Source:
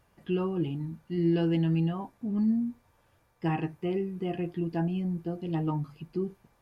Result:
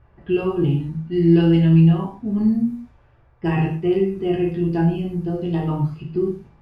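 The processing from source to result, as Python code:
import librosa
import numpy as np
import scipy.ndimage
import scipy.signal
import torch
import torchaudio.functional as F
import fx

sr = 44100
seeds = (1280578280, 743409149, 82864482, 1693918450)

y = fx.env_lowpass(x, sr, base_hz=1900.0, full_db=-27.5)
y = fx.low_shelf(y, sr, hz=110.0, db=11.0)
y = fx.rev_gated(y, sr, seeds[0], gate_ms=170, shape='falling', drr_db=-1.5)
y = y * librosa.db_to_amplitude(4.5)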